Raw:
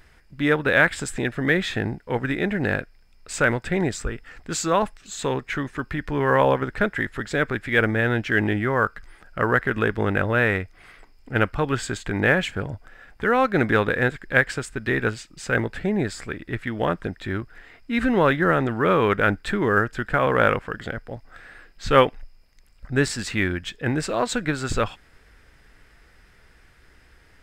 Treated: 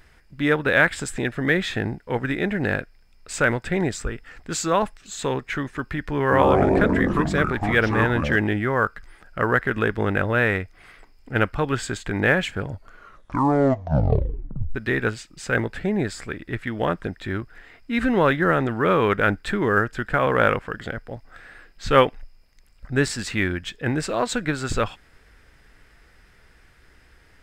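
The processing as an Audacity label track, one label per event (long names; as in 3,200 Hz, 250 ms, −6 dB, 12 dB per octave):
6.210000	8.360000	delay with pitch and tempo change per echo 106 ms, each echo −6 semitones, echoes 3
12.660000	12.660000	tape stop 2.09 s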